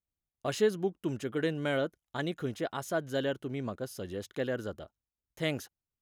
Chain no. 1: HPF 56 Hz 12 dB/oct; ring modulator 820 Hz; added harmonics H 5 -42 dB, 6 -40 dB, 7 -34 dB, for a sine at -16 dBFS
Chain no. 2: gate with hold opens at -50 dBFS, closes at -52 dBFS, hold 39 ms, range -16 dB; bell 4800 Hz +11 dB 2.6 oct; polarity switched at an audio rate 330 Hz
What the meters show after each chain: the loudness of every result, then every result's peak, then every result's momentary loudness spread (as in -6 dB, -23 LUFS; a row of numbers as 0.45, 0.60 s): -37.0, -31.5 LUFS; -16.5, -11.5 dBFS; 11, 9 LU